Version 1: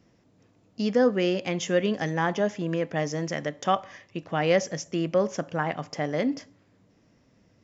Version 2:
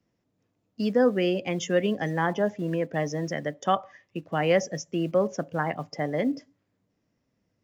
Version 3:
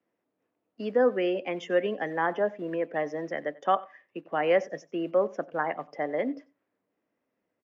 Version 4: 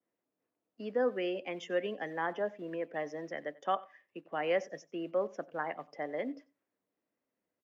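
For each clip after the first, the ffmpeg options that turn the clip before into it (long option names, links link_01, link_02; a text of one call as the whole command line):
ffmpeg -i in.wav -filter_complex "[0:a]afftdn=noise_reduction=13:noise_floor=-37,acrossover=split=170|850[link_01][link_02][link_03];[link_01]acrusher=bits=5:mode=log:mix=0:aa=0.000001[link_04];[link_04][link_02][link_03]amix=inputs=3:normalize=0" out.wav
ffmpeg -i in.wav -filter_complex "[0:a]acrossover=split=270 2900:gain=0.0794 1 0.1[link_01][link_02][link_03];[link_01][link_02][link_03]amix=inputs=3:normalize=0,aecho=1:1:92:0.0794" out.wav
ffmpeg -i in.wav -af "adynamicequalizer=threshold=0.00794:dfrequency=2600:dqfactor=0.7:tfrequency=2600:tqfactor=0.7:attack=5:release=100:ratio=0.375:range=3:mode=boostabove:tftype=highshelf,volume=-7.5dB" out.wav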